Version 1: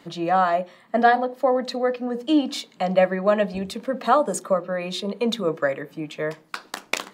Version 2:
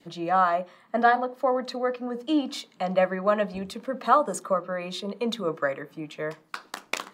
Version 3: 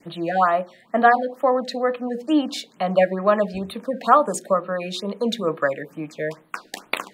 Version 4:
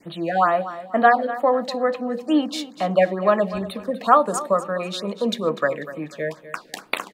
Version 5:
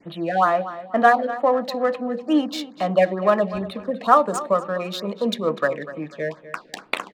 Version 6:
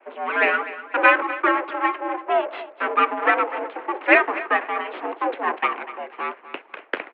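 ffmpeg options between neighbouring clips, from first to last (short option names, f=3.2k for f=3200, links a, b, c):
-af "adynamicequalizer=threshold=0.0158:dfrequency=1200:dqfactor=2:tfrequency=1200:tqfactor=2:attack=5:release=100:ratio=0.375:range=3.5:mode=boostabove:tftype=bell,volume=-5dB"
-af "afftfilt=real='re*(1-between(b*sr/1024,980*pow(6600/980,0.5+0.5*sin(2*PI*2.2*pts/sr))/1.41,980*pow(6600/980,0.5+0.5*sin(2*PI*2.2*pts/sr))*1.41))':imag='im*(1-between(b*sr/1024,980*pow(6600/980,0.5+0.5*sin(2*PI*2.2*pts/sr))/1.41,980*pow(6600/980,0.5+0.5*sin(2*PI*2.2*pts/sr))*1.41))':win_size=1024:overlap=0.75,volume=5dB"
-af "aecho=1:1:246|492|738:0.188|0.0622|0.0205"
-af "adynamicsmooth=sensitivity=5.5:basefreq=3.8k"
-af "aeval=exprs='abs(val(0))':c=same,highpass=f=240:t=q:w=0.5412,highpass=f=240:t=q:w=1.307,lowpass=f=2.6k:t=q:w=0.5176,lowpass=f=2.6k:t=q:w=0.7071,lowpass=f=2.6k:t=q:w=1.932,afreqshift=81,volume=5dB"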